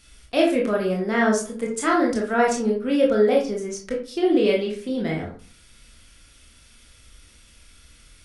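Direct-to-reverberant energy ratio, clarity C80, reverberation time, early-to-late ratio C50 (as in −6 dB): −1.5 dB, 12.0 dB, 0.45 s, 6.5 dB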